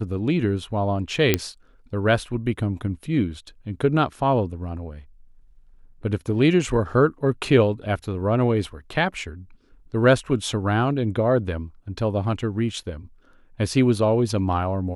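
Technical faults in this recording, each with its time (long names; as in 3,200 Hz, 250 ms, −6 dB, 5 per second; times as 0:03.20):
0:01.34: click −3 dBFS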